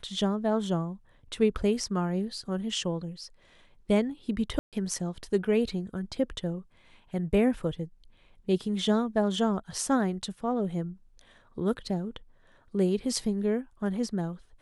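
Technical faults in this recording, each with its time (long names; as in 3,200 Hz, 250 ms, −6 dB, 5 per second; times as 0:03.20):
0:04.59–0:04.73: drop-out 137 ms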